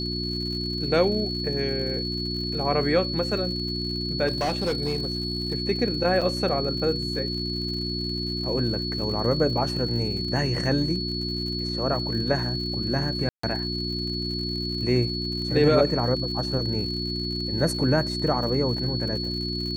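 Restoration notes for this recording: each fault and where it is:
crackle 100 per s -35 dBFS
hum 60 Hz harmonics 6 -31 dBFS
whine 4.4 kHz -30 dBFS
4.27–5.53 s: clipped -21 dBFS
6.21–6.22 s: dropout 5.8 ms
13.29–13.43 s: dropout 144 ms

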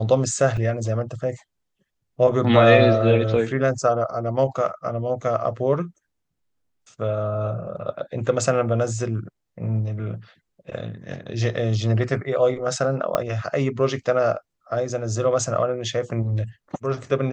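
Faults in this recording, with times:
0.57 s: dropout 3.9 ms
13.15 s: pop -7 dBFS

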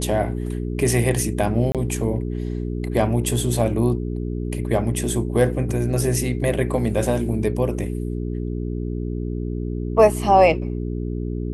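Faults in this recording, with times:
hum 60 Hz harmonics 7 -26 dBFS
1.72–1.75 s: dropout 27 ms

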